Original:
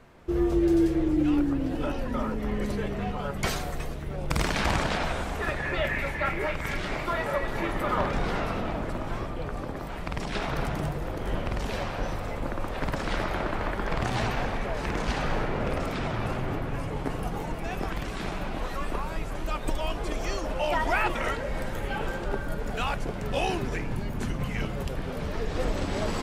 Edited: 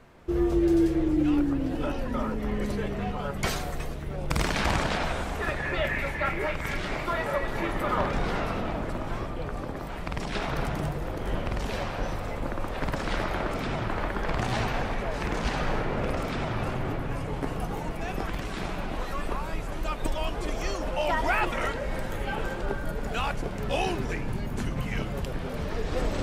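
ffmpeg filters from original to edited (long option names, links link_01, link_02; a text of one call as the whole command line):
ffmpeg -i in.wav -filter_complex "[0:a]asplit=3[link_01][link_02][link_03];[link_01]atrim=end=13.512[link_04];[link_02]atrim=start=15.828:end=16.202[link_05];[link_03]atrim=start=13.508[link_06];[link_04][link_05]acrossfade=duration=0.004:curve1=hsin:curve2=hsin[link_07];[link_07][link_06]acrossfade=duration=0.004:curve1=hsin:curve2=hsin" out.wav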